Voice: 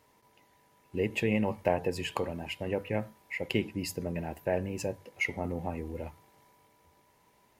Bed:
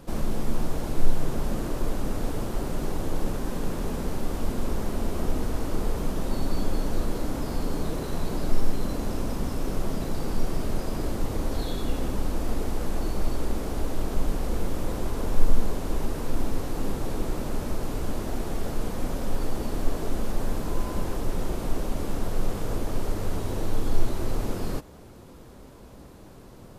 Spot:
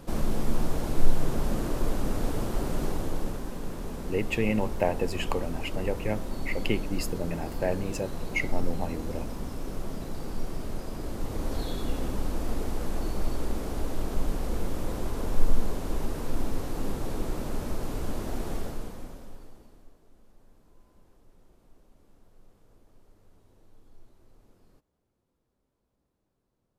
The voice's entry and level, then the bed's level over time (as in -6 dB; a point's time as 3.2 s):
3.15 s, +1.5 dB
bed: 2.84 s 0 dB
3.55 s -6.5 dB
11.02 s -6.5 dB
11.52 s -2.5 dB
18.56 s -2.5 dB
20 s -31.5 dB